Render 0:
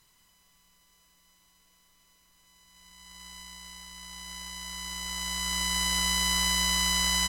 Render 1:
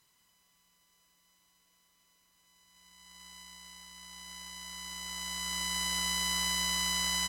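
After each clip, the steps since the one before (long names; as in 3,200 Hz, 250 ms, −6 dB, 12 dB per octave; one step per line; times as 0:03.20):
high-pass filter 110 Hz 6 dB per octave
level −5 dB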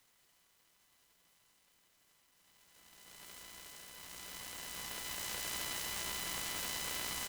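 guitar amp tone stack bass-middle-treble 5-5-5
downward compressor 6 to 1, threshold −41 dBFS, peak gain reduction 8 dB
short delay modulated by noise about 3,800 Hz, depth 0.056 ms
level +7 dB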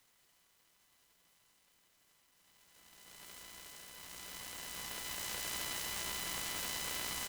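no processing that can be heard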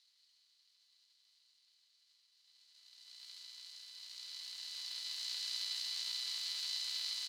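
resonant band-pass 4,300 Hz, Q 6.7
level +11.5 dB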